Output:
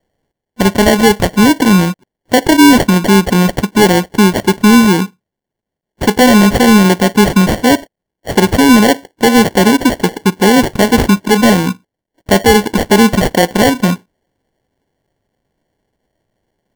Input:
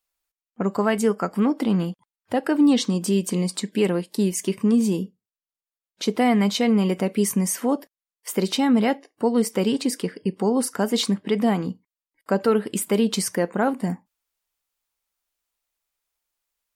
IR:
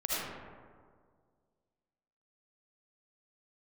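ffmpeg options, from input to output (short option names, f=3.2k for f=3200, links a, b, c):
-af "acrusher=samples=35:mix=1:aa=0.000001,apsyclip=14.5dB,volume=-1.5dB"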